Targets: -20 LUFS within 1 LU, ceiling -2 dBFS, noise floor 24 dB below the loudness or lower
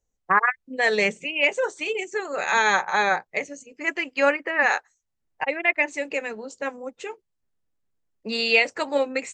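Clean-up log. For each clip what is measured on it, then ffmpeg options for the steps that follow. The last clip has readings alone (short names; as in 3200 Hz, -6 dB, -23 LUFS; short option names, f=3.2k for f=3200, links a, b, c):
loudness -23.5 LUFS; peak -6.0 dBFS; loudness target -20.0 LUFS
-> -af "volume=3.5dB"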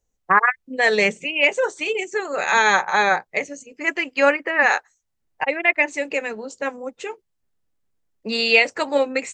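loudness -20.0 LUFS; peak -2.5 dBFS; noise floor -74 dBFS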